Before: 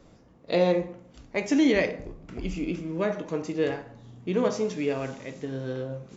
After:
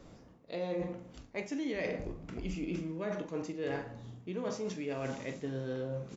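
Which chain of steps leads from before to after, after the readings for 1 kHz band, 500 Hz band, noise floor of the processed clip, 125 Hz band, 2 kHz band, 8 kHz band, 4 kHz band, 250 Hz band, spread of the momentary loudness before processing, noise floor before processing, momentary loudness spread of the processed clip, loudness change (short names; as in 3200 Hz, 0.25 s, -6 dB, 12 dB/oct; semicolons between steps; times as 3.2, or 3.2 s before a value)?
-9.5 dB, -10.0 dB, -57 dBFS, -6.0 dB, -9.5 dB, n/a, -11.0 dB, -10.5 dB, 16 LU, -56 dBFS, 7 LU, -10.5 dB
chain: reverse; compressor 12:1, threshold -33 dBFS, peak gain reduction 16 dB; reverse; doubler 43 ms -13 dB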